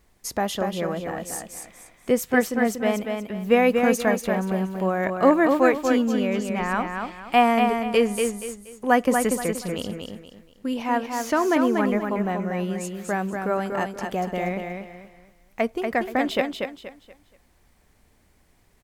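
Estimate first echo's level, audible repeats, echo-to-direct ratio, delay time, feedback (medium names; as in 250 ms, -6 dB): -5.0 dB, 3, -4.5 dB, 238 ms, 31%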